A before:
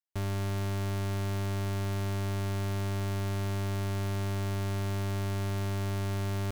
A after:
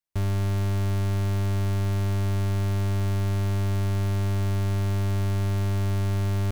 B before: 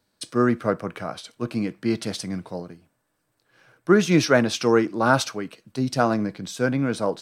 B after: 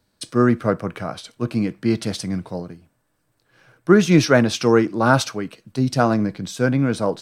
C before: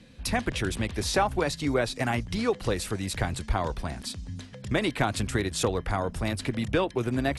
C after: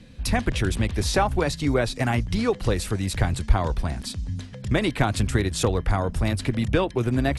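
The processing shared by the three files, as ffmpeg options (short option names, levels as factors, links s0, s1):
-af "lowshelf=f=140:g=8.5,volume=1.26"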